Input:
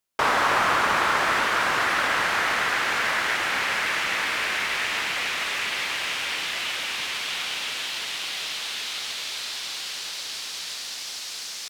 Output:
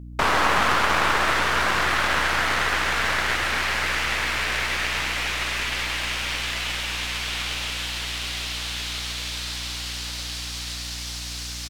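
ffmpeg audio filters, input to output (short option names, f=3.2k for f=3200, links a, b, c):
-af "aeval=exprs='0.422*(cos(1*acos(clip(val(0)/0.422,-1,1)))-cos(1*PI/2))+0.0841*(cos(4*acos(clip(val(0)/0.422,-1,1)))-cos(4*PI/2))':c=same,aeval=exprs='val(0)+0.0141*(sin(2*PI*60*n/s)+sin(2*PI*2*60*n/s)/2+sin(2*PI*3*60*n/s)/3+sin(2*PI*4*60*n/s)/4+sin(2*PI*5*60*n/s)/5)':c=same,aecho=1:1:131:0.299"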